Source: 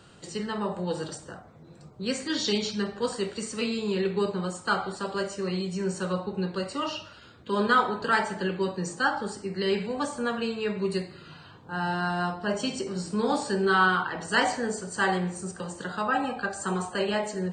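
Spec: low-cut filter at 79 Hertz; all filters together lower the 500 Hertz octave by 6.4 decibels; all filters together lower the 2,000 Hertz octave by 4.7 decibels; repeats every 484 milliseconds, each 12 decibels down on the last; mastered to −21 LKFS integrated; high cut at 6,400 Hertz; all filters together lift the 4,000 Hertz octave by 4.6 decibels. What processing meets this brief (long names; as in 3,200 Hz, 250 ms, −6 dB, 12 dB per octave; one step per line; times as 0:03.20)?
high-pass filter 79 Hz
low-pass filter 6,400 Hz
parametric band 500 Hz −8.5 dB
parametric band 2,000 Hz −8 dB
parametric band 4,000 Hz +9 dB
repeating echo 484 ms, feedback 25%, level −12 dB
level +9.5 dB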